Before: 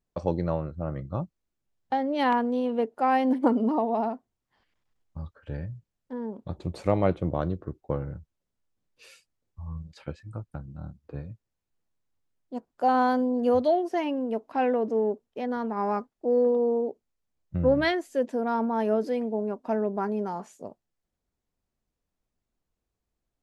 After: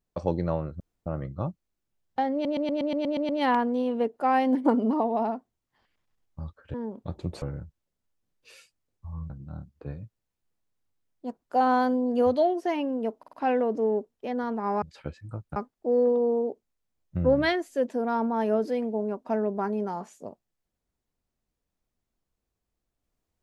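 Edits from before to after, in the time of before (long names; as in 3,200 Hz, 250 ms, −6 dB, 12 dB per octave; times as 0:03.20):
0:00.80: splice in room tone 0.26 s
0:02.07: stutter 0.12 s, 9 plays
0:05.52–0:06.15: remove
0:06.83–0:07.96: remove
0:09.84–0:10.58: move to 0:15.95
0:14.46: stutter 0.05 s, 4 plays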